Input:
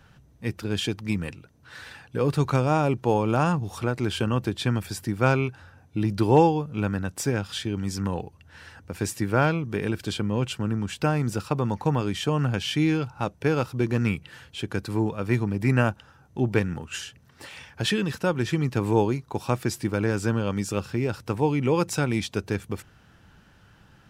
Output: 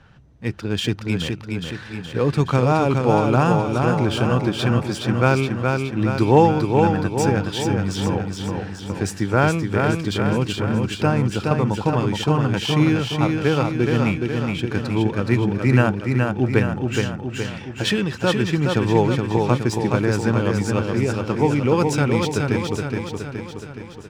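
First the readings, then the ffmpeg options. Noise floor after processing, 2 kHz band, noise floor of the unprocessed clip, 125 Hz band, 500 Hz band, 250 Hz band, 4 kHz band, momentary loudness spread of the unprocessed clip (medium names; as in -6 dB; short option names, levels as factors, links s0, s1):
-36 dBFS, +5.5 dB, -56 dBFS, +6.0 dB, +6.0 dB, +6.0 dB, +5.5 dB, 11 LU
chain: -af "adynamicsmooth=sensitivity=7.5:basefreq=5600,aecho=1:1:420|840|1260|1680|2100|2520|2940|3360:0.631|0.36|0.205|0.117|0.0666|0.038|0.0216|0.0123,volume=1.58"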